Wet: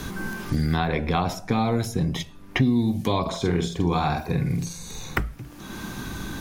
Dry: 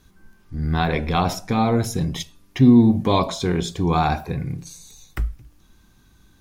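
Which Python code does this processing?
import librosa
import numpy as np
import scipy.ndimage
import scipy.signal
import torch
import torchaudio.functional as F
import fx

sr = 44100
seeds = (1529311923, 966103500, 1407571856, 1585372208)

y = fx.doubler(x, sr, ms=46.0, db=-4, at=(3.21, 5.21))
y = fx.band_squash(y, sr, depth_pct=100)
y = F.gain(torch.from_numpy(y), -4.0).numpy()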